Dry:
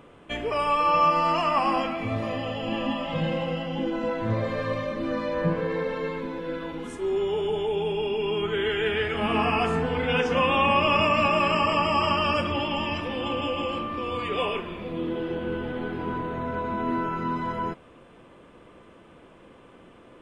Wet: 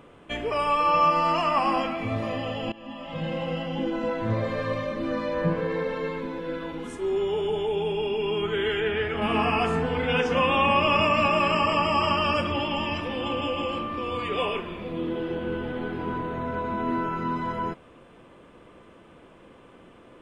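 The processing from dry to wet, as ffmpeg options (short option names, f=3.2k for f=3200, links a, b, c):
-filter_complex "[0:a]asettb=1/sr,asplit=3[a][b][c];[a]atrim=end=8.804[d];[b]atrim=start=8.8:end=9.22,asetpts=PTS-STARTPTS,afade=t=in:d=0.004:c=qsin,afade=t=out:st=0.416:d=0.004:c=qsin,highshelf=f=4.3k:g=-10.5[e];[c]atrim=start=9.216[f];[d][e]acrossfade=d=0.004:c1=hsin:c2=qsin[g];[g][f]acrossfade=d=0.004:c1=qsin:c2=hsin,asplit=2[h][i];[h]atrim=end=2.72,asetpts=PTS-STARTPTS,afade=t=out:st=2.716:d=0.004:c=hsin:silence=0.0841395[j];[i]atrim=start=2.72,asetpts=PTS-STARTPTS,afade=t=in:d=0.86:silence=0.0841395[k];[j][k]concat=n=2:v=0:a=1"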